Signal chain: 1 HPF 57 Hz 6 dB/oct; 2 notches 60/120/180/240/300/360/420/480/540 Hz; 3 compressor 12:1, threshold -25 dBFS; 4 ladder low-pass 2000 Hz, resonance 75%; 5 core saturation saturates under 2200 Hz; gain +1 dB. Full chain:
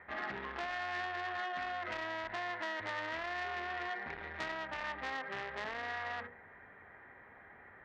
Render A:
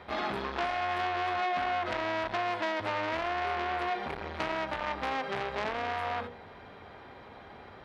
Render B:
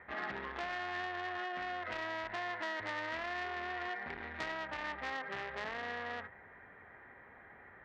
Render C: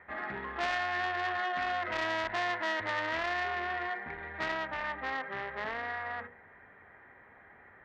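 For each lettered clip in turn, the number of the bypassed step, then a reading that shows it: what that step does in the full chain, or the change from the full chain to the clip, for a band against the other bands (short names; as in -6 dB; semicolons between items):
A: 4, 2 kHz band -7.0 dB; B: 2, 250 Hz band +2.0 dB; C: 3, mean gain reduction 3.5 dB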